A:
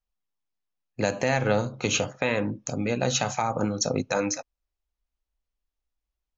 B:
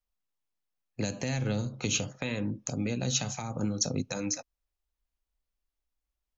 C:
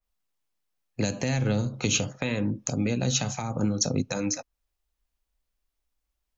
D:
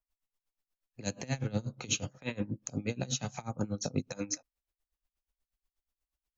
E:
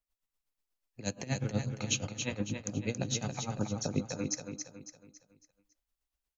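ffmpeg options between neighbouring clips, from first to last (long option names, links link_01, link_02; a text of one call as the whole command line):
ffmpeg -i in.wav -filter_complex "[0:a]acrossover=split=310|3000[link_01][link_02][link_03];[link_02]acompressor=threshold=-38dB:ratio=6[link_04];[link_01][link_04][link_03]amix=inputs=3:normalize=0,volume=-1.5dB" out.wav
ffmpeg -i in.wav -af "adynamicequalizer=threshold=0.00398:dfrequency=2400:dqfactor=0.7:tfrequency=2400:tqfactor=0.7:attack=5:release=100:ratio=0.375:range=2:mode=cutabove:tftype=highshelf,volume=5dB" out.wav
ffmpeg -i in.wav -af "aeval=exprs='val(0)*pow(10,-22*(0.5-0.5*cos(2*PI*8.3*n/s))/20)':channel_layout=same,volume=-2.5dB" out.wav
ffmpeg -i in.wav -af "aecho=1:1:277|554|831|1108|1385:0.473|0.194|0.0795|0.0326|0.0134" out.wav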